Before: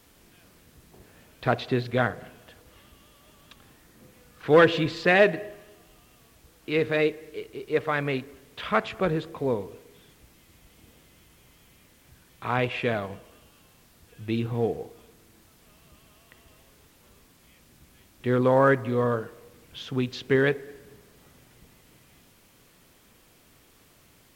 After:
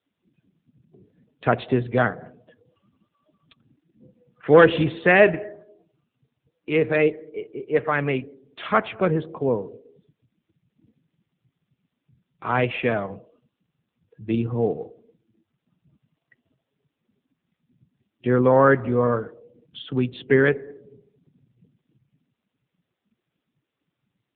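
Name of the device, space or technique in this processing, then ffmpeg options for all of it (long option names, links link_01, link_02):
mobile call with aggressive noise cancelling: -filter_complex "[0:a]asplit=3[link_01][link_02][link_03];[link_01]afade=type=out:start_time=20.13:duration=0.02[link_04];[link_02]equalizer=frequency=4200:width=3.7:gain=-3,afade=type=in:start_time=20.13:duration=0.02,afade=type=out:start_time=20.56:duration=0.02[link_05];[link_03]afade=type=in:start_time=20.56:duration=0.02[link_06];[link_04][link_05][link_06]amix=inputs=3:normalize=0,highpass=frequency=100:width=0.5412,highpass=frequency=100:width=1.3066,afftdn=noise_reduction=26:noise_floor=-45,volume=4.5dB" -ar 8000 -c:a libopencore_amrnb -b:a 7950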